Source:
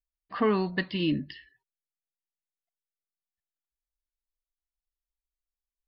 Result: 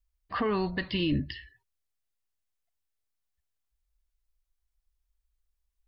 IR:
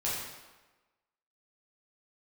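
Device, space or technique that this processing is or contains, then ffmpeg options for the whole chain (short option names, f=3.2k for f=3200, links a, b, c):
car stereo with a boomy subwoofer: -af "lowshelf=f=120:t=q:w=1.5:g=12,alimiter=limit=-23dB:level=0:latency=1:release=64,volume=4dB"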